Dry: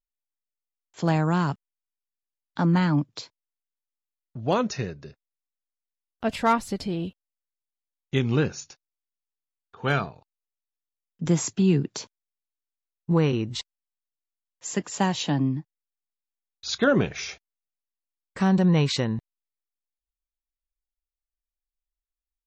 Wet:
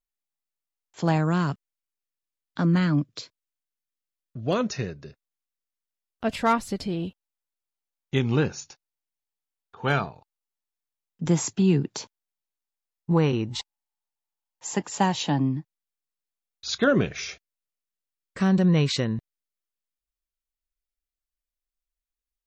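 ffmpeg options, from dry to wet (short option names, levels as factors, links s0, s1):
-af "asetnsamples=n=441:p=0,asendcmd='1.18 equalizer g -7;2.61 equalizer g -13.5;4.61 equalizer g -2;7.03 equalizer g 4.5;13.47 equalizer g 15;14.84 equalizer g 5.5;15.56 equalizer g -2.5;16.91 equalizer g -9.5',equalizer=f=860:t=o:w=0.32:g=2"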